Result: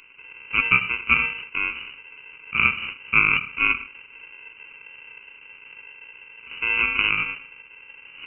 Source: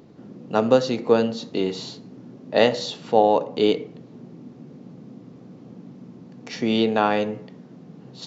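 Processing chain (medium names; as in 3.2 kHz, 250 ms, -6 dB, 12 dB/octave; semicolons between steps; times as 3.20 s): sample-rate reducer 1.1 kHz, jitter 0%; frequency inversion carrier 2.9 kHz; trim -2 dB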